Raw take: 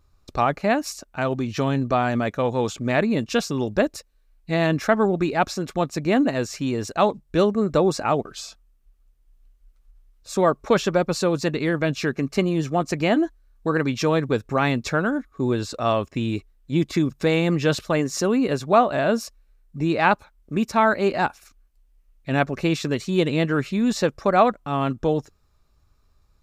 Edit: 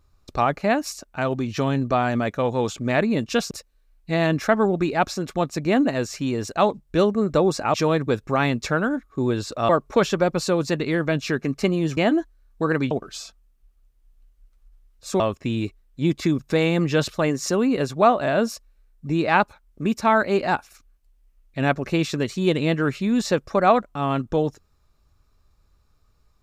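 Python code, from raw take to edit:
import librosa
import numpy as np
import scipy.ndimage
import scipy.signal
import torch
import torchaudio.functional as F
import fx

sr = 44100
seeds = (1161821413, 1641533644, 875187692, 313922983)

y = fx.edit(x, sr, fx.cut(start_s=3.51, length_s=0.4),
    fx.swap(start_s=8.14, length_s=2.29, other_s=13.96, other_length_s=1.95),
    fx.cut(start_s=12.71, length_s=0.31), tone=tone)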